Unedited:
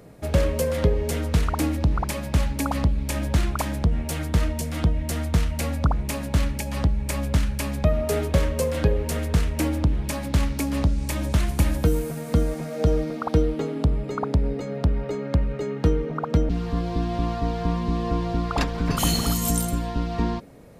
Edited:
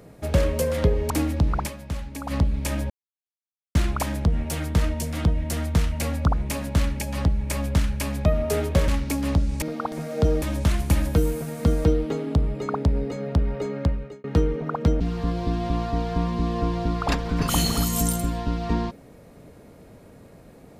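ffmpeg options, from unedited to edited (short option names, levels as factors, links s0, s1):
-filter_complex "[0:a]asplit=11[s0][s1][s2][s3][s4][s5][s6][s7][s8][s9][s10];[s0]atrim=end=1.102[s11];[s1]atrim=start=1.538:end=2.2,asetpts=PTS-STARTPTS,afade=t=out:st=0.542:d=0.12:c=qua:silence=0.354813[s12];[s2]atrim=start=2.2:end=2.66,asetpts=PTS-STARTPTS,volume=0.355[s13];[s3]atrim=start=2.66:end=3.34,asetpts=PTS-STARTPTS,afade=t=in:d=0.12:c=qua:silence=0.354813,afade=t=out:st=0.676:d=0.004:c=hsin,apad=pad_dur=0.85[s14];[s4]atrim=start=3.34:end=8.472,asetpts=PTS-STARTPTS,afade=t=in:d=0.004:c=hsin[s15];[s5]atrim=start=10.368:end=11.112[s16];[s6]atrim=start=13.038:end=13.342[s17];[s7]atrim=start=12.538:end=13.042[s18];[s8]atrim=start=11.108:end=12.542[s19];[s9]atrim=start=13.338:end=15.73,asetpts=PTS-STARTPTS,afade=t=out:st=1.962:d=0.43[s20];[s10]atrim=start=15.73,asetpts=PTS-STARTPTS,afade=t=in:d=0.004:c=hsin[s21];[s12][s13][s14][s15]concat=n=4:v=0:a=1[s22];[s11][s22]acrossfade=d=0.004:c1=hsin:c2=hsin[s23];[s23][s16]acrossfade=d=0.004:c1=hsin:c2=hsin[s24];[s24][s17]acrossfade=d=0.004:c1=hsin:c2=hsin[s25];[s25][s18]acrossfade=d=0.004:c1=hsin:c2=hsin[s26];[s26][s19]acrossfade=d=0.004:c1=hsin:c2=hsin[s27];[s20][s21]concat=n=2:v=0:a=1[s28];[s27][s28]acrossfade=d=0.004:c1=hsin:c2=hsin"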